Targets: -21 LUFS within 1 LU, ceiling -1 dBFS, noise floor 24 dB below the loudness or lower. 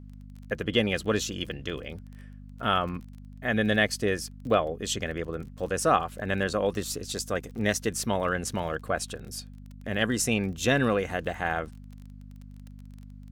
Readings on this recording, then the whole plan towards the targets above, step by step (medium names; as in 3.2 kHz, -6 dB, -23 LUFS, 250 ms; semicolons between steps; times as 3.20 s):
tick rate 28 per s; hum 50 Hz; highest harmonic 250 Hz; hum level -42 dBFS; loudness -28.5 LUFS; peak level -9.5 dBFS; loudness target -21.0 LUFS
-> de-click; de-hum 50 Hz, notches 5; trim +7.5 dB